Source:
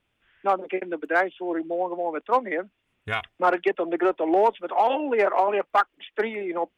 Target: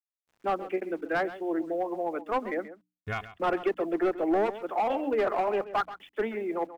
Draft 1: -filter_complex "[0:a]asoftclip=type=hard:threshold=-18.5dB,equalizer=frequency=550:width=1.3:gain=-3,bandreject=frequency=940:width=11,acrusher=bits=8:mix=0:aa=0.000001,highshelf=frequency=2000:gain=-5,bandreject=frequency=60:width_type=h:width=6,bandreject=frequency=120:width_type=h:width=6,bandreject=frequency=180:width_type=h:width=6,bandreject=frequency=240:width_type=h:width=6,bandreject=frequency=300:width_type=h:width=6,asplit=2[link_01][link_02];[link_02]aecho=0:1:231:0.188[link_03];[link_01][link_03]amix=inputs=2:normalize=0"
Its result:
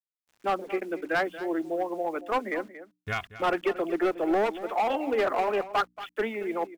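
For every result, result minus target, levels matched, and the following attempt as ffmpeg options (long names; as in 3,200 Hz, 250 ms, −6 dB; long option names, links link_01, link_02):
echo 99 ms late; 4,000 Hz band +5.0 dB
-filter_complex "[0:a]asoftclip=type=hard:threshold=-18.5dB,equalizer=frequency=550:width=1.3:gain=-3,bandreject=frequency=940:width=11,acrusher=bits=8:mix=0:aa=0.000001,highshelf=frequency=2000:gain=-5,bandreject=frequency=60:width_type=h:width=6,bandreject=frequency=120:width_type=h:width=6,bandreject=frequency=180:width_type=h:width=6,bandreject=frequency=240:width_type=h:width=6,bandreject=frequency=300:width_type=h:width=6,asplit=2[link_01][link_02];[link_02]aecho=0:1:132:0.188[link_03];[link_01][link_03]amix=inputs=2:normalize=0"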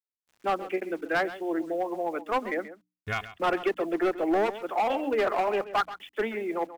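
4,000 Hz band +5.0 dB
-filter_complex "[0:a]asoftclip=type=hard:threshold=-18.5dB,equalizer=frequency=550:width=1.3:gain=-3,bandreject=frequency=940:width=11,acrusher=bits=8:mix=0:aa=0.000001,highshelf=frequency=2000:gain=-13.5,bandreject=frequency=60:width_type=h:width=6,bandreject=frequency=120:width_type=h:width=6,bandreject=frequency=180:width_type=h:width=6,bandreject=frequency=240:width_type=h:width=6,bandreject=frequency=300:width_type=h:width=6,asplit=2[link_01][link_02];[link_02]aecho=0:1:132:0.188[link_03];[link_01][link_03]amix=inputs=2:normalize=0"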